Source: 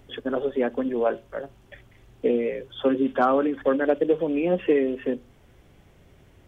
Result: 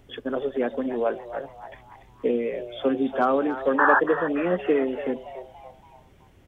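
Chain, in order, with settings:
sound drawn into the spectrogram noise, 0:03.78–0:04.00, 760–1,800 Hz −17 dBFS
echo with shifted repeats 285 ms, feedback 44%, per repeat +130 Hz, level −12.5 dB
level −1.5 dB

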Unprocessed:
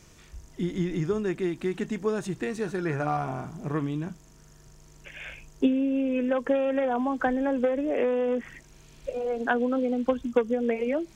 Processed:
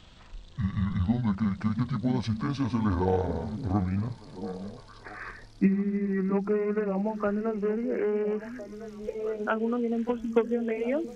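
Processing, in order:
pitch glide at a constant tempo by −11 semitones ending unshifted
speech leveller 2 s
echo through a band-pass that steps 678 ms, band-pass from 210 Hz, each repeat 1.4 octaves, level −8.5 dB

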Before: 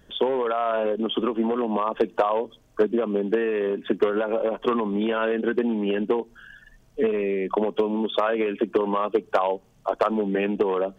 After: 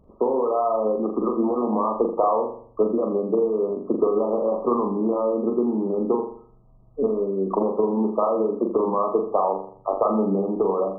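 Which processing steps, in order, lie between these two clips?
linear-phase brick-wall low-pass 1,300 Hz
flutter between parallel walls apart 7.1 metres, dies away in 0.53 s

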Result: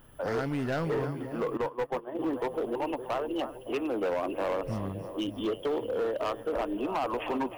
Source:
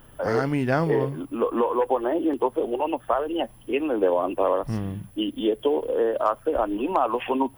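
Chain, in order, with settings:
echo with a time of its own for lows and highs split 580 Hz, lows 562 ms, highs 312 ms, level −12 dB
0:01.57–0:02.19: noise gate −21 dBFS, range −17 dB
hard clipping −20 dBFS, distortion −11 dB
level −5.5 dB

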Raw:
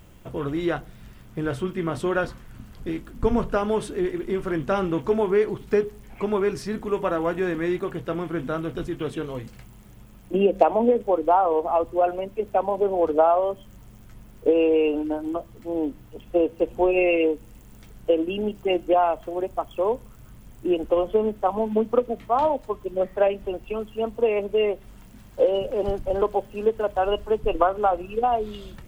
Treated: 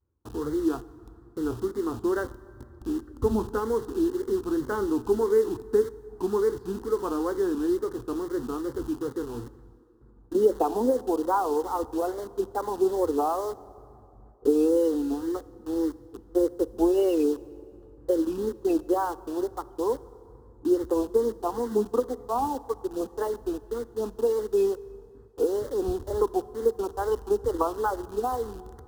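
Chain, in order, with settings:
adaptive Wiener filter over 15 samples
noise gate with hold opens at −38 dBFS
high-pass filter 56 Hz 24 dB per octave
spectral tilt −2 dB per octave
in parallel at −6 dB: bit reduction 5 bits
on the sum: phaser with its sweep stopped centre 620 Hz, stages 6
tape wow and flutter 140 cents
on a send at −18.5 dB: convolution reverb RT60 2.9 s, pre-delay 13 ms
on the sum: level −6 dB

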